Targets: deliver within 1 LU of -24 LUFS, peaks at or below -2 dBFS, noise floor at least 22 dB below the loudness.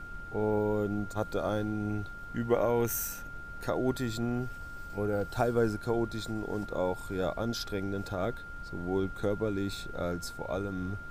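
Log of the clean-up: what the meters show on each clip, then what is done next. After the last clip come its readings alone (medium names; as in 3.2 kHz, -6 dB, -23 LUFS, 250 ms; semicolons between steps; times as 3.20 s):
steady tone 1.4 kHz; tone level -43 dBFS; noise floor -44 dBFS; noise floor target -55 dBFS; loudness -33.0 LUFS; peak level -14.0 dBFS; loudness target -24.0 LUFS
-> band-stop 1.4 kHz, Q 30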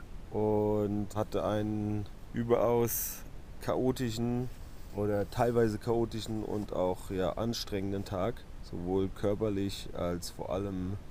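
steady tone not found; noise floor -47 dBFS; noise floor target -55 dBFS
-> noise print and reduce 8 dB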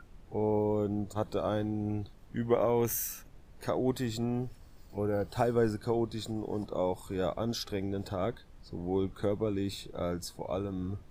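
noise floor -54 dBFS; noise floor target -55 dBFS
-> noise print and reduce 6 dB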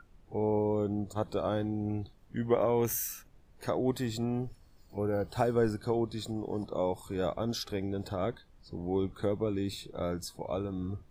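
noise floor -59 dBFS; loudness -33.0 LUFS; peak level -14.0 dBFS; loudness target -24.0 LUFS
-> trim +9 dB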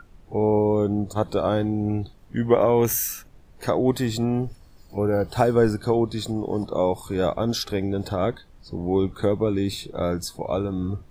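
loudness -24.0 LUFS; peak level -5.0 dBFS; noise floor -50 dBFS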